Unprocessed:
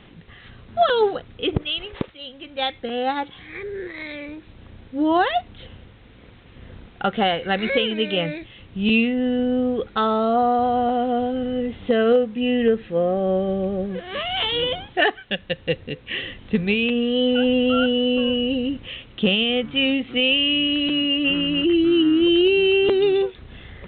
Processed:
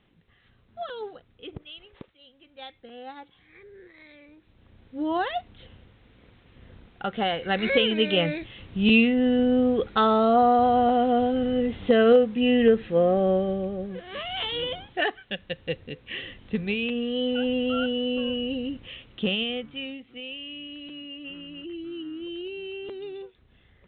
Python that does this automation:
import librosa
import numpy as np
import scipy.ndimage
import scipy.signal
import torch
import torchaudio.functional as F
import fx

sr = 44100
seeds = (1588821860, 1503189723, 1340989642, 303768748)

y = fx.gain(x, sr, db=fx.line((4.29, -17.5), (5.02, -8.0), (7.04, -8.0), (7.86, 0.0), (13.21, 0.0), (13.75, -7.0), (19.42, -7.0), (20.03, -19.0)))